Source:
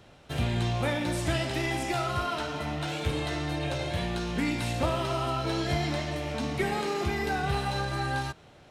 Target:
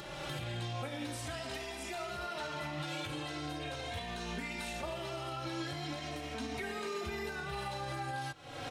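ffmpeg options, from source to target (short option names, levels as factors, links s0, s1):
-filter_complex "[0:a]lowshelf=f=340:g=-7.5,acompressor=mode=upward:threshold=0.0158:ratio=2.5,alimiter=level_in=6.31:limit=0.0631:level=0:latency=1:release=414,volume=0.158,asplit=2[s0][s1];[s1]adelay=3,afreqshift=-0.39[s2];[s0][s2]amix=inputs=2:normalize=1,volume=3.98"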